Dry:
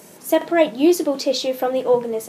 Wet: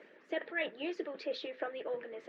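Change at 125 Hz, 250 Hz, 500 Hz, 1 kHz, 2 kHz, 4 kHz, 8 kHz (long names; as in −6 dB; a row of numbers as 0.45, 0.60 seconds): can't be measured, −23.5 dB, −20.0 dB, −21.5 dB, −9.0 dB, −17.5 dB, below −35 dB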